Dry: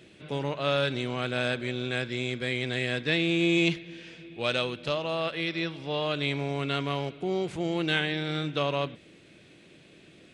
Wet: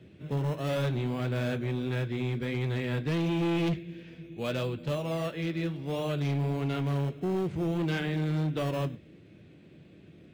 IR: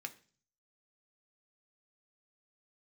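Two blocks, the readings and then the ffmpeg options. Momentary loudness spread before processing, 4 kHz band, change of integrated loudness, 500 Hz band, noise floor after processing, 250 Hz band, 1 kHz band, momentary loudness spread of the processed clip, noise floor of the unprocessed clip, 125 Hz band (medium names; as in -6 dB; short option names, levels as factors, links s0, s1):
7 LU, -10.5 dB, -2.0 dB, -3.0 dB, -54 dBFS, 0.0 dB, -4.5 dB, 5 LU, -55 dBFS, +4.5 dB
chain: -filter_complex "[0:a]lowpass=f=1900:p=1,equalizer=f=100:w=0.38:g=11,acrossover=split=620|790[s0][s1][s2];[s1]acrusher=samples=15:mix=1:aa=0.000001:lfo=1:lforange=9:lforate=0.59[s3];[s0][s3][s2]amix=inputs=3:normalize=0,flanger=delay=9.5:depth=4.8:regen=-55:speed=1.5:shape=triangular,asoftclip=type=hard:threshold=0.0562"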